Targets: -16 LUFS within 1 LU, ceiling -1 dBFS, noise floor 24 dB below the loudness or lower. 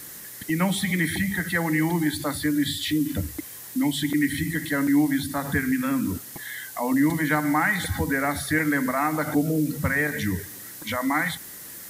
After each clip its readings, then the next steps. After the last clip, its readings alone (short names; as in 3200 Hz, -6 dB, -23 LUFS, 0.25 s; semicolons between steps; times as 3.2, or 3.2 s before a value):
noise floor -41 dBFS; noise floor target -49 dBFS; loudness -24.5 LUFS; peak -11.5 dBFS; loudness target -16.0 LUFS
-> denoiser 8 dB, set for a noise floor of -41 dBFS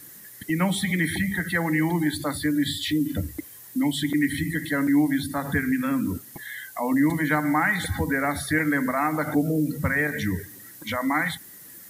noise floor -45 dBFS; noise floor target -49 dBFS
-> denoiser 6 dB, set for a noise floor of -45 dBFS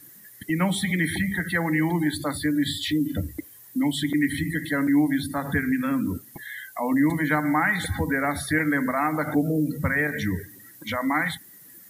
noise floor -49 dBFS; loudness -24.5 LUFS; peak -11.5 dBFS; loudness target -16.0 LUFS
-> gain +8.5 dB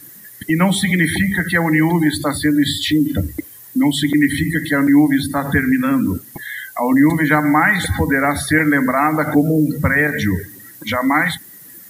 loudness -16.0 LUFS; peak -3.0 dBFS; noise floor -40 dBFS